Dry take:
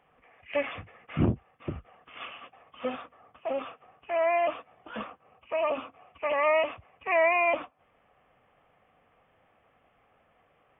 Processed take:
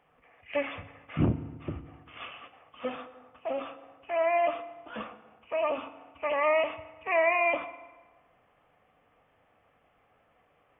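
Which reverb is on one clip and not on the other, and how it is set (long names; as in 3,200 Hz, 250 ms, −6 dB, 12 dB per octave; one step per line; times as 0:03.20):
feedback delay network reverb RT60 1.3 s, low-frequency decay 1×, high-frequency decay 0.7×, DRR 10 dB
level −1.5 dB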